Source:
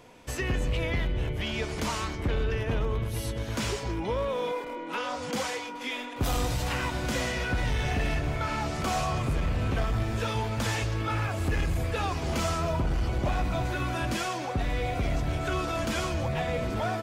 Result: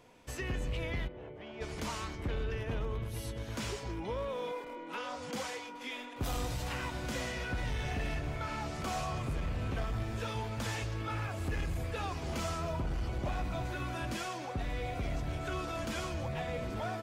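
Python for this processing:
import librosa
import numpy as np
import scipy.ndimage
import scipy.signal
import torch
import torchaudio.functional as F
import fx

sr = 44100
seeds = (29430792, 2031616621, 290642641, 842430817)

y = fx.bandpass_q(x, sr, hz=600.0, q=0.89, at=(1.07, 1.6), fade=0.02)
y = y * librosa.db_to_amplitude(-7.5)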